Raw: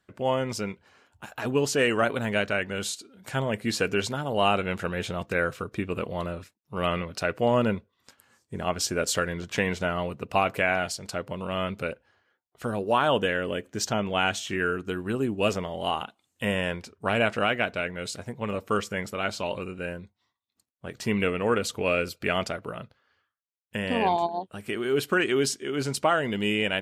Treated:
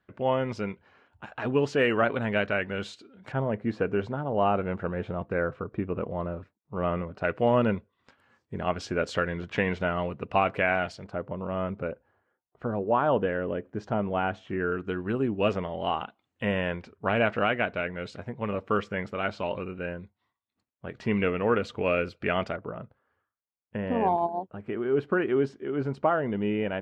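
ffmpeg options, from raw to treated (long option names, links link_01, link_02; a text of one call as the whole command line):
ffmpeg -i in.wav -af "asetnsamples=nb_out_samples=441:pad=0,asendcmd='3.32 lowpass f 1200;7.24 lowpass f 2600;11.04 lowpass f 1200;14.72 lowpass f 2400;22.56 lowpass f 1200',lowpass=2600" out.wav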